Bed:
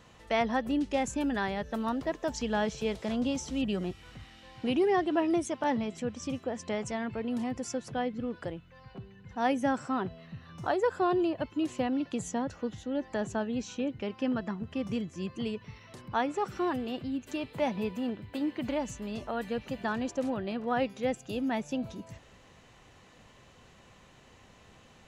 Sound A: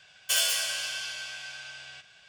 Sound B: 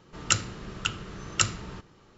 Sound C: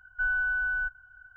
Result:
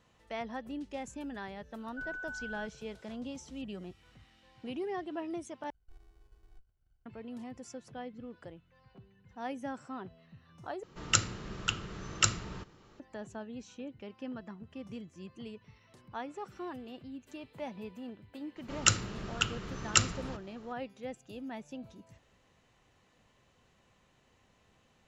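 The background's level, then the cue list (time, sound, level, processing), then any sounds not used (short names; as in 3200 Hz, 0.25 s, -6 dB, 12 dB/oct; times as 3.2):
bed -11 dB
1.78 add C -14 dB
5.7 replace with C -14.5 dB + running maximum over 65 samples
10.83 replace with B -2.5 dB
18.56 add B -1 dB
not used: A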